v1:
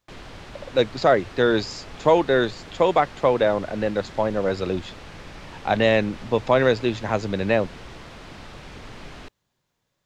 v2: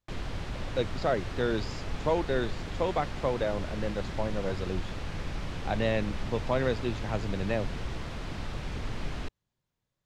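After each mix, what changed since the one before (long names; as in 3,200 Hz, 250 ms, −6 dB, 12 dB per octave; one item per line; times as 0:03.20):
speech −11.5 dB
master: add low-shelf EQ 170 Hz +9.5 dB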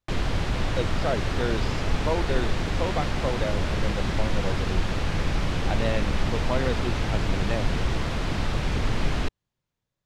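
background +10.0 dB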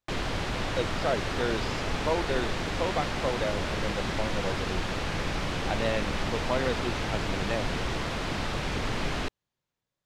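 master: add low-shelf EQ 170 Hz −9.5 dB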